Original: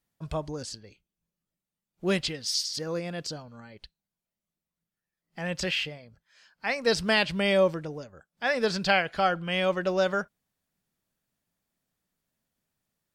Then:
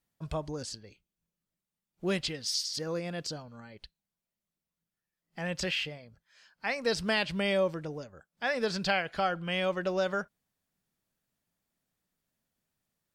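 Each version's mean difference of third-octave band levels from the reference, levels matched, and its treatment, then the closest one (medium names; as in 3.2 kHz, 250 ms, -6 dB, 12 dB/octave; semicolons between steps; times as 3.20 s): 1.5 dB: compression 1.5:1, threshold -29 dBFS, peak gain reduction 4.5 dB; trim -1.5 dB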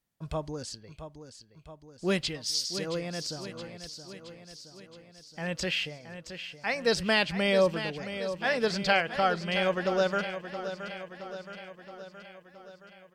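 4.0 dB: feedback delay 671 ms, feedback 59%, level -10.5 dB; trim -1.5 dB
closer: first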